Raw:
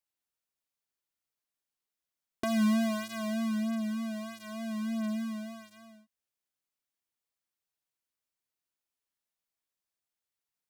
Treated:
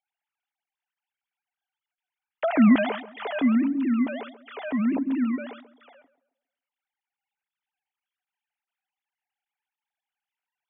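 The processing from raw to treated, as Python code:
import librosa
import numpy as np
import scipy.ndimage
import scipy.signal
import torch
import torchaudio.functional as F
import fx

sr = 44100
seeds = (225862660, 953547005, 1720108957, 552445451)

y = fx.sine_speech(x, sr)
y = fx.notch(y, sr, hz=1100.0, q=9.0)
y = fx.echo_tape(y, sr, ms=135, feedback_pct=41, wet_db=-13.0, lp_hz=1200.0, drive_db=21.0, wow_cents=15)
y = F.gain(torch.from_numpy(y), 8.0).numpy()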